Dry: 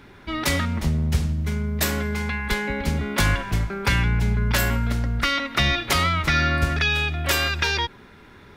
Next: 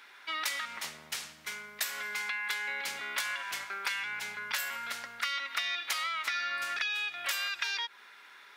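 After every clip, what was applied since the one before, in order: high-pass 1.3 kHz 12 dB/octave; compression 6:1, threshold -31 dBFS, peak gain reduction 12 dB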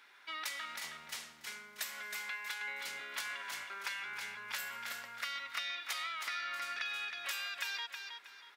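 feedback delay 318 ms, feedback 30%, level -6 dB; trim -7 dB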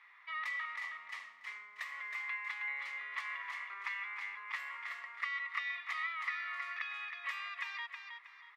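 two resonant band-passes 1.5 kHz, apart 0.72 oct; trim +7.5 dB

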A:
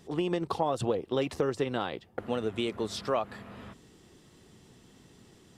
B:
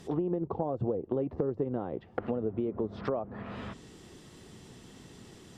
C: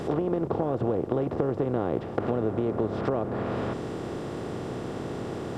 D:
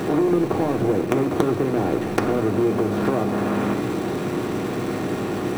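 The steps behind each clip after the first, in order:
low-pass that closes with the level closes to 560 Hz, closed at -29.5 dBFS; compression 2.5:1, threshold -35 dBFS, peak gain reduction 7.5 dB; trim +5.5 dB
spectral levelling over time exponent 0.4
in parallel at -8 dB: companded quantiser 2-bit; on the sum: reverberation RT60 0.70 s, pre-delay 3 ms, DRR 4.5 dB

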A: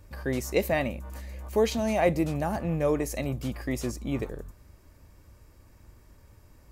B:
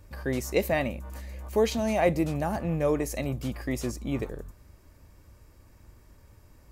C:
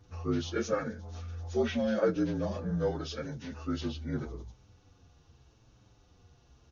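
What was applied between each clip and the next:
no audible change
frequency axis rescaled in octaves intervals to 80%; endless flanger 7.7 ms -0.83 Hz

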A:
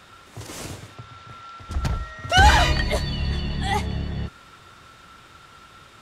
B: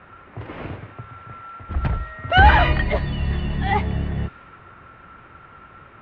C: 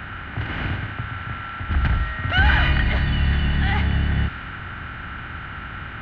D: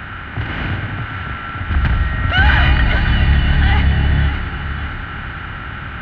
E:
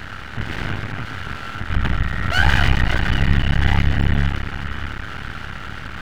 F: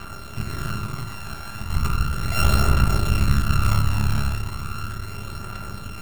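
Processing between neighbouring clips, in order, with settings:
low-pass 2.7 kHz 24 dB/octave; level-controlled noise filter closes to 2.1 kHz, open at -16.5 dBFS; in parallel at +1 dB: gain riding within 4 dB 2 s; on the sum: trim -5 dB
spectral levelling over time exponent 0.6; in parallel at +1 dB: peak limiter -11.5 dBFS, peak gain reduction 11.5 dB; on the sum: high-order bell 610 Hz -10.5 dB; trim -7 dB
echo whose repeats swap between lows and highs 281 ms, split 800 Hz, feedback 70%, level -6 dB; trim +4.5 dB
half-wave rectifier
sorted samples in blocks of 32 samples; phaser 0.36 Hz, delay 1.3 ms, feedback 34%; on a send at -4.5 dB: reverberation RT60 0.60 s, pre-delay 3 ms; on the sum: trim -6.5 dB

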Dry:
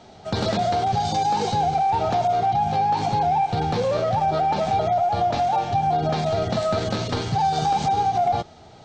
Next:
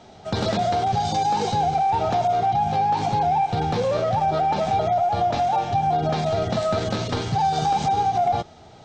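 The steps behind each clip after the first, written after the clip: band-stop 4.4 kHz, Q 21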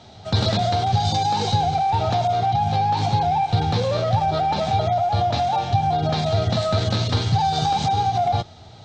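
fifteen-band graphic EQ 100 Hz +11 dB, 400 Hz -3 dB, 4 kHz +8 dB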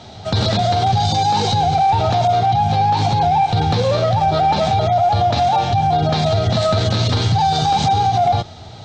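peak limiter -16 dBFS, peak gain reduction 8 dB; trim +7.5 dB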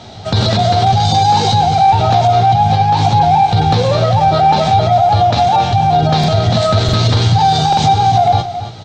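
doubling 18 ms -11.5 dB; delay 277 ms -11.5 dB; buffer glitch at 6.19/6.84/7.68 s, samples 2048, times 1; trim +3.5 dB

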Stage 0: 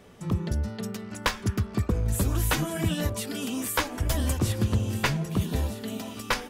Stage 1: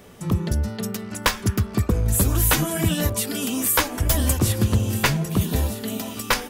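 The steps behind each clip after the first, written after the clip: treble shelf 9.8 kHz +11.5 dB; trim +5 dB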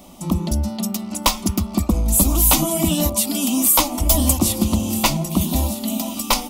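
static phaser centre 440 Hz, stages 6; trim +6.5 dB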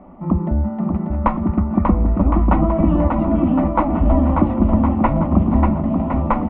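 steep low-pass 1.8 kHz 36 dB/octave; on a send: bouncing-ball echo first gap 590 ms, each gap 0.8×, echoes 5; on the sum: trim +2.5 dB

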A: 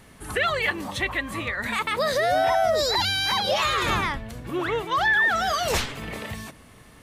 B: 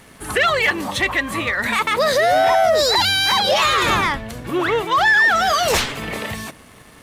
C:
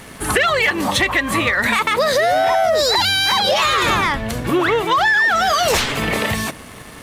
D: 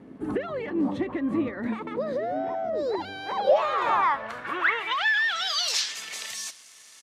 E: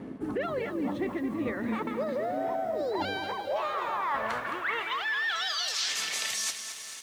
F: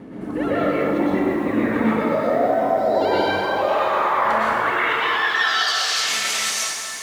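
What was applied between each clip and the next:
waveshaping leveller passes 1; bass shelf 140 Hz -7 dB; trim +4.5 dB
compression, threshold -22 dBFS, peak gain reduction 9.5 dB; trim +8 dB
band-pass sweep 280 Hz -> 6.2 kHz, 2.72–5.99 s; delay 704 ms -24 dB
reverse; compression 20:1, threshold -35 dBFS, peak gain reduction 21.5 dB; reverse; bit-crushed delay 216 ms, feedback 55%, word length 10-bit, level -9.5 dB; trim +7 dB
plate-style reverb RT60 2.2 s, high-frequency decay 0.45×, pre-delay 95 ms, DRR -9 dB; trim +2 dB

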